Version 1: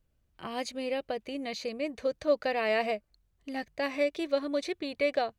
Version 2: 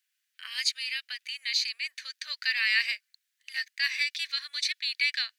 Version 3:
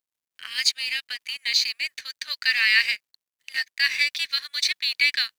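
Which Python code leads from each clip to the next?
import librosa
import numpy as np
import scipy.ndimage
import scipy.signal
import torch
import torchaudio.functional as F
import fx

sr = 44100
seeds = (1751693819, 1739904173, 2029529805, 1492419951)

y1 = scipy.signal.sosfilt(scipy.signal.cheby1(4, 1.0, 1700.0, 'highpass', fs=sr, output='sos'), x)
y1 = fx.dynamic_eq(y1, sr, hz=4700.0, q=2.1, threshold_db=-56.0, ratio=4.0, max_db=7)
y1 = F.gain(torch.from_numpy(y1), 9.0).numpy()
y2 = fx.law_mismatch(y1, sr, coded='A')
y2 = F.gain(torch.from_numpy(y2), 7.0).numpy()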